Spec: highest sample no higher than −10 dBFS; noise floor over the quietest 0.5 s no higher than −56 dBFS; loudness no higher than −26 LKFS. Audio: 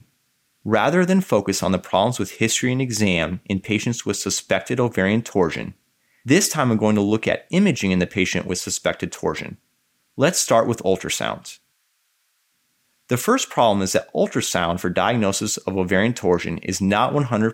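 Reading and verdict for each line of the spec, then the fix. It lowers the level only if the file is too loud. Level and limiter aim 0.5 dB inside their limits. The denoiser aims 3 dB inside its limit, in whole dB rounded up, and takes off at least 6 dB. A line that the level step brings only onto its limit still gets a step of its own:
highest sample −4.0 dBFS: out of spec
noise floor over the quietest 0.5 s −68 dBFS: in spec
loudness −20.5 LKFS: out of spec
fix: level −6 dB
brickwall limiter −10.5 dBFS

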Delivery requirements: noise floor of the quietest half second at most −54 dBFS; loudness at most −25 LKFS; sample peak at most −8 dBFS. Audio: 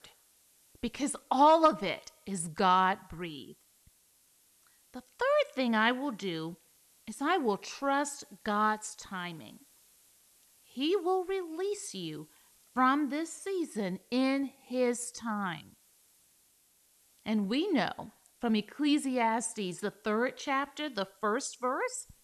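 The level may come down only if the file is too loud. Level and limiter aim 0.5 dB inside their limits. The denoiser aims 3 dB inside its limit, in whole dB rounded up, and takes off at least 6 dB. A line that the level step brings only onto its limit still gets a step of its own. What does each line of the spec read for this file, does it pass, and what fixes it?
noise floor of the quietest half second −67 dBFS: in spec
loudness −31.5 LKFS: in spec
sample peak −12.0 dBFS: in spec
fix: no processing needed

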